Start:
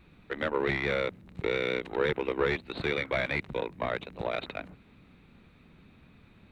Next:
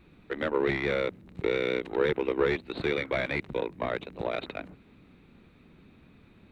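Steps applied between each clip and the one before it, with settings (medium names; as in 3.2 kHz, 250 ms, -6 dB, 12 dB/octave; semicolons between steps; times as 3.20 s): peaking EQ 340 Hz +5 dB 1.2 oct; trim -1 dB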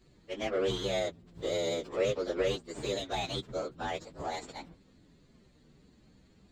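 frequency axis rescaled in octaves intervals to 124%; trim -1.5 dB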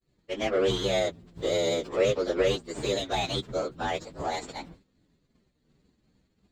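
expander -51 dBFS; trim +5.5 dB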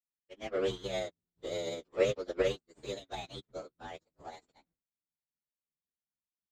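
upward expansion 2.5:1, over -46 dBFS; trim -2 dB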